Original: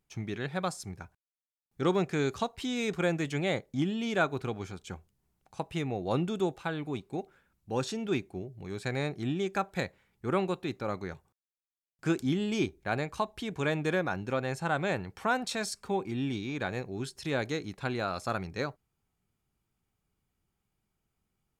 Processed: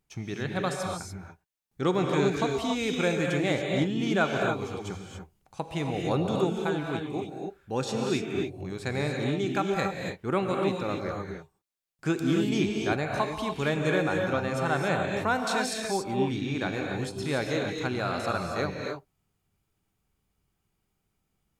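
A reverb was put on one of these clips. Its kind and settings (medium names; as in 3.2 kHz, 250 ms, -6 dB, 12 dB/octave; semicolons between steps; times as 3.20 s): gated-style reverb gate 310 ms rising, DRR 1 dB; trim +1.5 dB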